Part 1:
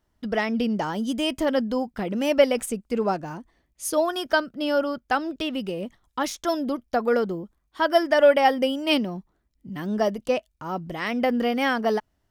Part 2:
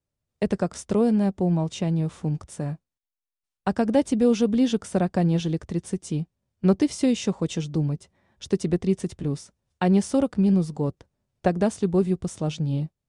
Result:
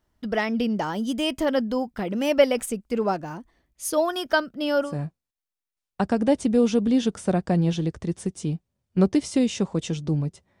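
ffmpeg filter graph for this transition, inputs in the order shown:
ffmpeg -i cue0.wav -i cue1.wav -filter_complex "[0:a]apad=whole_dur=10.6,atrim=end=10.6,atrim=end=4.96,asetpts=PTS-STARTPTS[link_01];[1:a]atrim=start=2.47:end=8.27,asetpts=PTS-STARTPTS[link_02];[link_01][link_02]acrossfade=duration=0.16:curve1=tri:curve2=tri" out.wav

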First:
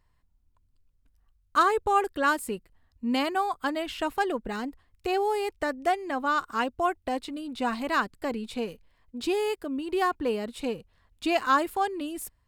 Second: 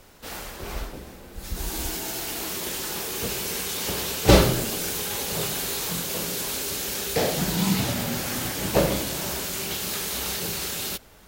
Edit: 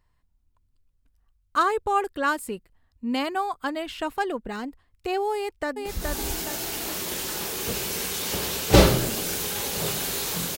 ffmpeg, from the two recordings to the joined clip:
ffmpeg -i cue0.wav -i cue1.wav -filter_complex "[0:a]apad=whole_dur=10.57,atrim=end=10.57,atrim=end=5.862[link_01];[1:a]atrim=start=1.408:end=6.12[link_02];[link_01][link_02]acrossfade=duration=0.004:curve1=hsin:curve2=hsin,asplit=2[link_03][link_04];[link_04]afade=type=in:start_time=5.34:duration=0.01,afade=type=out:start_time=5.86:duration=0.01,aecho=0:1:420|840|1260|1680|2100|2520:0.630957|0.283931|0.127769|0.057496|0.0258732|0.0116429[link_05];[link_03][link_05]amix=inputs=2:normalize=0" out.wav

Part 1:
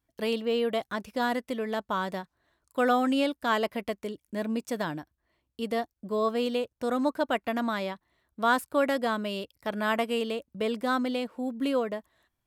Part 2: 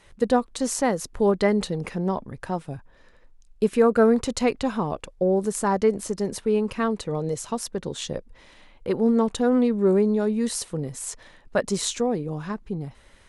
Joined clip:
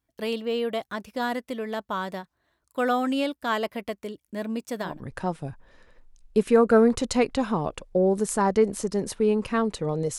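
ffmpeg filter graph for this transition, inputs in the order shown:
ffmpeg -i cue0.wav -i cue1.wav -filter_complex "[0:a]apad=whole_dur=10.18,atrim=end=10.18,atrim=end=5.03,asetpts=PTS-STARTPTS[link_01];[1:a]atrim=start=2.07:end=7.44,asetpts=PTS-STARTPTS[link_02];[link_01][link_02]acrossfade=duration=0.22:curve1=tri:curve2=tri" out.wav

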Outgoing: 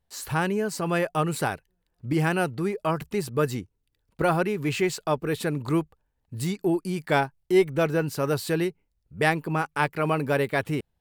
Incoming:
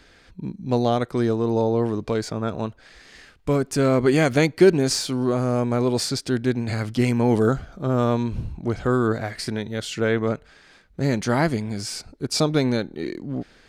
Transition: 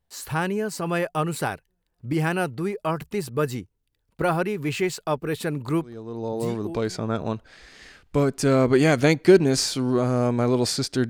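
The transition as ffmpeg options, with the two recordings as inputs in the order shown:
ffmpeg -i cue0.wav -i cue1.wav -filter_complex "[0:a]apad=whole_dur=11.09,atrim=end=11.09,atrim=end=7.07,asetpts=PTS-STARTPTS[link_01];[1:a]atrim=start=1.1:end=6.42,asetpts=PTS-STARTPTS[link_02];[link_01][link_02]acrossfade=duration=1.3:curve1=tri:curve2=tri" out.wav

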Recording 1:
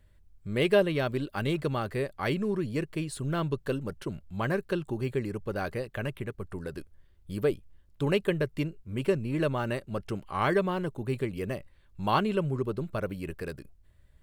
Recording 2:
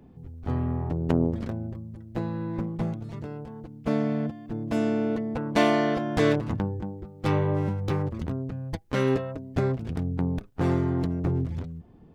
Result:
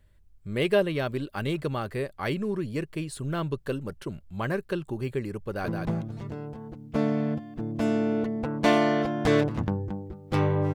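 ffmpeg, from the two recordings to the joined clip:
ffmpeg -i cue0.wav -i cue1.wav -filter_complex "[0:a]apad=whole_dur=10.74,atrim=end=10.74,atrim=end=5.682[link_01];[1:a]atrim=start=2.598:end=7.66[link_02];[link_01][link_02]acrossfade=duration=0.004:curve1=hsin:curve2=hsin,asplit=2[link_03][link_04];[link_04]afade=type=in:start_time=5.42:duration=0.01,afade=type=out:start_time=5.68:duration=0.01,aecho=0:1:170|340|510:0.562341|0.112468|0.0224937[link_05];[link_03][link_05]amix=inputs=2:normalize=0" out.wav

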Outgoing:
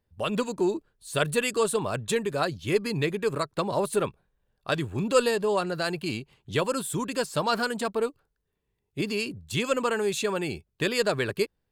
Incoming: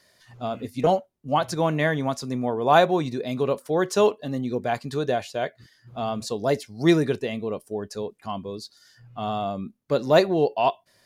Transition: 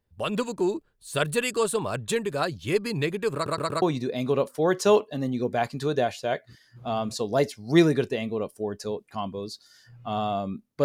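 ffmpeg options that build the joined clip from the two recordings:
ffmpeg -i cue0.wav -i cue1.wav -filter_complex "[0:a]apad=whole_dur=10.84,atrim=end=10.84,asplit=4[link_01][link_02][link_03][link_04];[link_01]atrim=end=3.462[link_05];[link_02]atrim=start=3.338:end=3.462[link_06];[link_03]atrim=start=3.338:end=3.462[link_07];[link_04]atrim=start=3.338:end=3.462[link_08];[1:a]atrim=start=2.928:end=9.95[link_09];[link_05][link_06]acrossfade=duration=0.004:curve1=hsin:curve2=hsin[link_10];[link_10][link_07]acrossfade=duration=0.004:curve1=hsin:curve2=hsin[link_11];[link_11][link_08]acrossfade=duration=0.004:curve1=hsin:curve2=hsin[link_12];[link_12][link_09]acrossfade=duration=0.004:curve1=hsin:curve2=hsin" out.wav

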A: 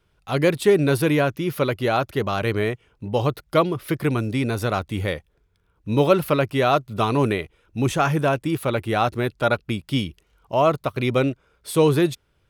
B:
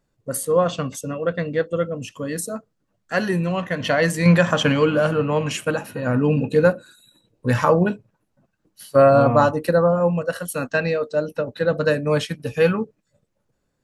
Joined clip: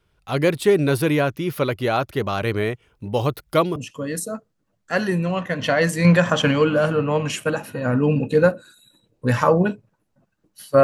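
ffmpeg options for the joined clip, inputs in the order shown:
ffmpeg -i cue0.wav -i cue1.wav -filter_complex "[0:a]asettb=1/sr,asplit=3[link_01][link_02][link_03];[link_01]atrim=end=2.824[link_04];[link_02]atrim=start=2.82:end=3.76,asetpts=PTS-STARTPTS,afade=type=in:duration=0.004:curve=qsin,afade=type=out:start_time=0.936:duration=0.004:curve=qsin,highshelf=frequency=8100:gain=6.5[link_05];[link_03]atrim=start=3.756[link_06];[link_04][link_05]acrossfade=duration=0.004:curve1=hsin:curve2=qsin[link_07];[link_07][link_06]acrossfade=duration=0.004:curve1=qsin:curve2=hsin,apad=whole_dur=10.83,atrim=end=10.83,atrim=end=3.762[link_08];[1:a]atrim=start=1.968:end=9.04[link_09];[link_08][link_09]acrossfade=duration=0.004:curve1=hsin:curve2=hsin" out.wav

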